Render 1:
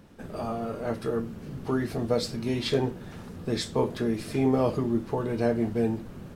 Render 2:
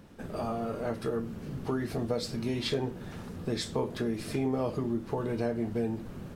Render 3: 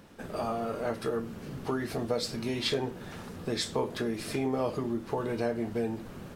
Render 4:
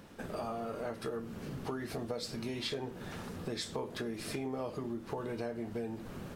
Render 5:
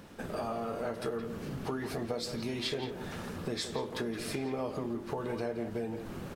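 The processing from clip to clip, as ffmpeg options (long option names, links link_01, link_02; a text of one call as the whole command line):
ffmpeg -i in.wav -af "acompressor=threshold=-29dB:ratio=2.5" out.wav
ffmpeg -i in.wav -af "lowshelf=frequency=330:gain=-7.5,volume=3.5dB" out.wav
ffmpeg -i in.wav -af "acompressor=threshold=-38dB:ratio=2.5" out.wav
ffmpeg -i in.wav -filter_complex "[0:a]asplit=2[link_01][link_02];[link_02]adelay=170,highpass=300,lowpass=3400,asoftclip=type=hard:threshold=-32.5dB,volume=-7dB[link_03];[link_01][link_03]amix=inputs=2:normalize=0,volume=2.5dB" out.wav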